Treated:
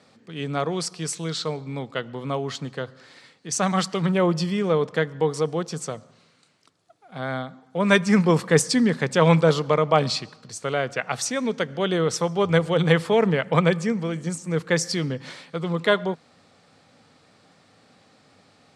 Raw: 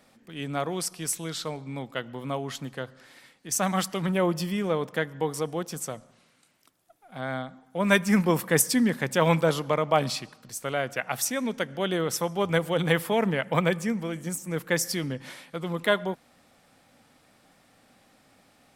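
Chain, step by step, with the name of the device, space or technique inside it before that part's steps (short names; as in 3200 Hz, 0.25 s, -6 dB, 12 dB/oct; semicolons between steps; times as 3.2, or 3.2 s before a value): car door speaker (speaker cabinet 81–8200 Hz, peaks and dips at 98 Hz +8 dB, 160 Hz +5 dB, 440 Hz +6 dB, 1200 Hz +3 dB, 4300 Hz +6 dB); gain +2 dB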